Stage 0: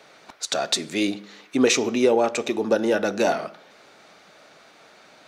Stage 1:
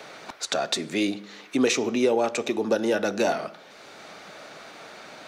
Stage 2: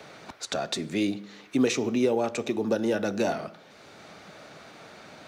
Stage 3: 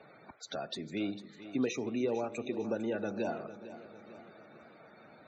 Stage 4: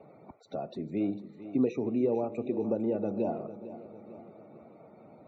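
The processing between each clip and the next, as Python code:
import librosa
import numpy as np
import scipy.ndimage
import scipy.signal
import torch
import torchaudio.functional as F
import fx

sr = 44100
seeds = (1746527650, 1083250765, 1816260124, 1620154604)

y1 = fx.band_squash(x, sr, depth_pct=40)
y1 = F.gain(torch.from_numpy(y1), -2.0).numpy()
y2 = fx.peak_eq(y1, sr, hz=84.0, db=11.5, octaves=2.8)
y2 = fx.quant_float(y2, sr, bits=6)
y2 = F.gain(torch.from_numpy(y2), -5.0).numpy()
y3 = fx.spec_topn(y2, sr, count=64)
y3 = fx.echo_feedback(y3, sr, ms=451, feedback_pct=52, wet_db=-14.0)
y3 = F.gain(torch.from_numpy(y3), -8.5).numpy()
y4 = scipy.signal.lfilter(np.full(27, 1.0 / 27), 1.0, y3)
y4 = F.gain(torch.from_numpy(y4), 5.5).numpy()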